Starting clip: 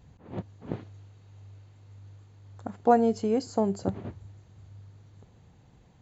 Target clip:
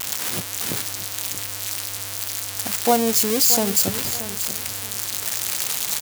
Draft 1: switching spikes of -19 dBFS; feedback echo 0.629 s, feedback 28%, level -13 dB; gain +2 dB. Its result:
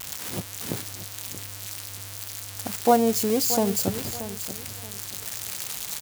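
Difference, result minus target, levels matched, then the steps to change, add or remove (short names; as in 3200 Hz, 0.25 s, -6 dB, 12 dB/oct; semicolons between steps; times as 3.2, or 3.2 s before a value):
switching spikes: distortion -8 dB
change: switching spikes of -10.5 dBFS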